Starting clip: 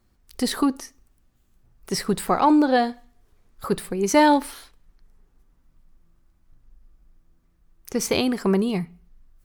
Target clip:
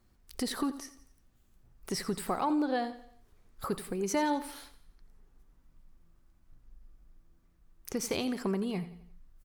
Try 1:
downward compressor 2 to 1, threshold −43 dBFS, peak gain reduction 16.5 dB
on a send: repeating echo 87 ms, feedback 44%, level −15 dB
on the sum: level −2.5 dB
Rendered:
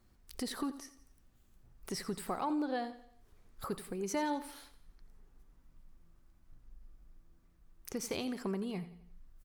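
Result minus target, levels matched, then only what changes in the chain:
downward compressor: peak gain reduction +5 dB
change: downward compressor 2 to 1, threshold −33 dBFS, peak gain reduction 11.5 dB

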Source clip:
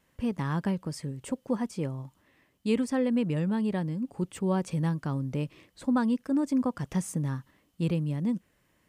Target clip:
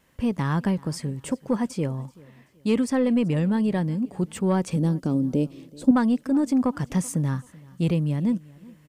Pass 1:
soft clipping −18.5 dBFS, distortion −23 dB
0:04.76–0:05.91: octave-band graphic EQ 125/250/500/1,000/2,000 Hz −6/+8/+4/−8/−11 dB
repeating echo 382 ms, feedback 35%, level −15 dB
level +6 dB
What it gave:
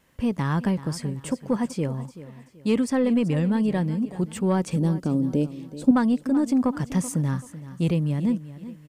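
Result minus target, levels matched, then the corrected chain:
echo-to-direct +8 dB
soft clipping −18.5 dBFS, distortion −23 dB
0:04.76–0:05.91: octave-band graphic EQ 125/250/500/1,000/2,000 Hz −6/+8/+4/−8/−11 dB
repeating echo 382 ms, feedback 35%, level −23 dB
level +6 dB

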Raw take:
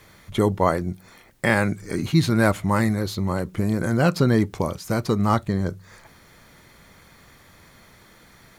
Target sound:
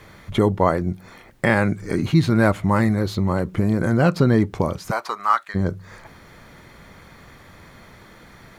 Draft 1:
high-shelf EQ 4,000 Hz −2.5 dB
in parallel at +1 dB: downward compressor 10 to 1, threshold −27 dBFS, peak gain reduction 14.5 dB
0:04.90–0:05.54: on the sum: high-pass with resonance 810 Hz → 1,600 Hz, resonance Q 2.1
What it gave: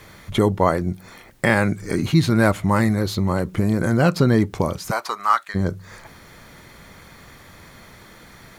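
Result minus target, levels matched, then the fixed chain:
8,000 Hz band +5.5 dB
high-shelf EQ 4,000 Hz −10 dB
in parallel at +1 dB: downward compressor 10 to 1, threshold −27 dBFS, peak gain reduction 14.5 dB
0:04.90–0:05.54: on the sum: high-pass with resonance 810 Hz → 1,600 Hz, resonance Q 2.1

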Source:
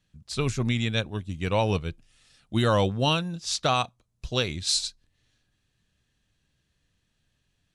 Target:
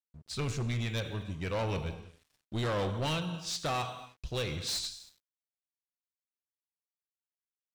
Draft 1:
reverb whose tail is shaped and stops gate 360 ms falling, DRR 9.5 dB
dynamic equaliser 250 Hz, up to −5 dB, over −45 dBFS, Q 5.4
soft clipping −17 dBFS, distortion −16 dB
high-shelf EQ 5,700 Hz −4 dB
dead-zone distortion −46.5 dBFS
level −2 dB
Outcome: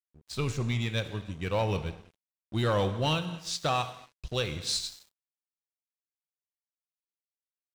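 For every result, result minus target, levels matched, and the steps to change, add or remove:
soft clipping: distortion −9 dB; dead-zone distortion: distortion +7 dB
change: soft clipping −26 dBFS, distortion −7 dB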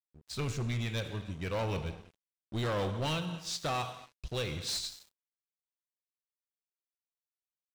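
dead-zone distortion: distortion +9 dB
change: dead-zone distortion −56.5 dBFS

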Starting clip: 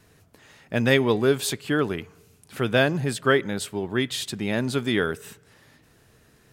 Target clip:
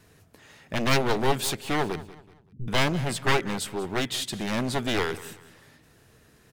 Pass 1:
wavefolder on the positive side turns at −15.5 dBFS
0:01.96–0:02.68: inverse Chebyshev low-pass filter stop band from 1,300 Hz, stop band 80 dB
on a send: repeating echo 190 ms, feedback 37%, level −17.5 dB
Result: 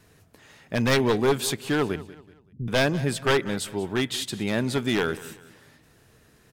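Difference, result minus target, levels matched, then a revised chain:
wavefolder on the positive side: distortion −12 dB
wavefolder on the positive side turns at −23.5 dBFS
0:01.96–0:02.68: inverse Chebyshev low-pass filter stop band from 1,300 Hz, stop band 80 dB
on a send: repeating echo 190 ms, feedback 37%, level −17.5 dB

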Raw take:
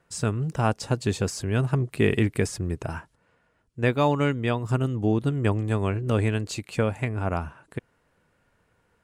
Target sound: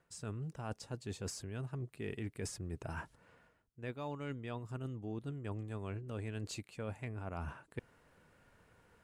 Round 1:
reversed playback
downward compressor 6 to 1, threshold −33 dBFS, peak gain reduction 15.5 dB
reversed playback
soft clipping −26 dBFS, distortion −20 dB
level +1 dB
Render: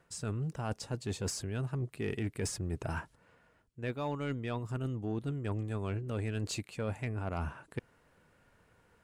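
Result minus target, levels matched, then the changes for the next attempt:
downward compressor: peak gain reduction −7 dB
change: downward compressor 6 to 1, threshold −41.5 dBFS, peak gain reduction 23 dB

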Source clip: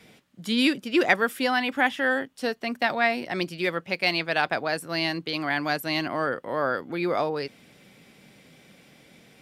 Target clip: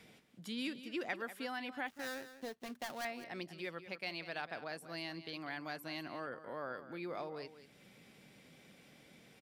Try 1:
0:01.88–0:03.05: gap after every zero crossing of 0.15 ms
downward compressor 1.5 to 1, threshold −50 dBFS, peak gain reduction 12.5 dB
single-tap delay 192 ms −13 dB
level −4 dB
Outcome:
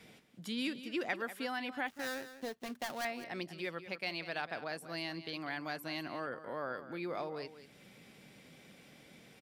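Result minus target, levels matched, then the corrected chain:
downward compressor: peak gain reduction −3.5 dB
0:01.88–0:03.05: gap after every zero crossing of 0.15 ms
downward compressor 1.5 to 1, threshold −60 dBFS, peak gain reduction 16 dB
single-tap delay 192 ms −13 dB
level −4 dB

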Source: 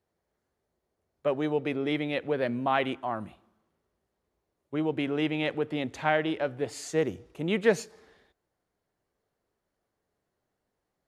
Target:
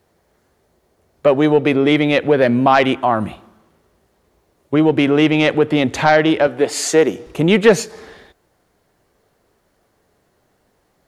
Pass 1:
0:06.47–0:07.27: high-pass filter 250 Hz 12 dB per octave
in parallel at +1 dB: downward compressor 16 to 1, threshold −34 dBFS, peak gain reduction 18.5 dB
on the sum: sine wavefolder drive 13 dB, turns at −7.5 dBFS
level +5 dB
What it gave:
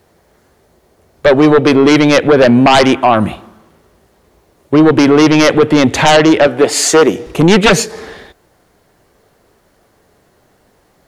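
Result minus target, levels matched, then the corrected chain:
sine wavefolder: distortion +15 dB
0:06.47–0:07.27: high-pass filter 250 Hz 12 dB per octave
in parallel at +1 dB: downward compressor 16 to 1, threshold −34 dBFS, peak gain reduction 18.5 dB
on the sum: sine wavefolder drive 4 dB, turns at −7.5 dBFS
level +5 dB

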